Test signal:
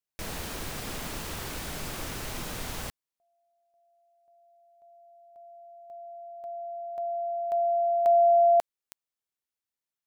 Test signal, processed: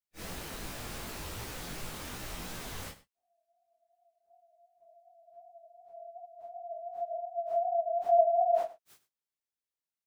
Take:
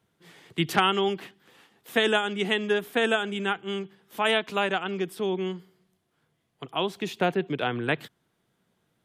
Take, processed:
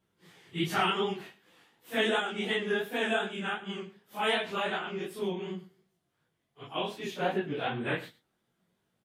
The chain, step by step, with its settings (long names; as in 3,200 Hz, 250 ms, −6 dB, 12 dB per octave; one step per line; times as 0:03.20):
random phases in long frames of 100 ms
chorus effect 2.7 Hz, delay 16 ms, depth 7.4 ms
single-tap delay 98 ms −16.5 dB
level −2 dB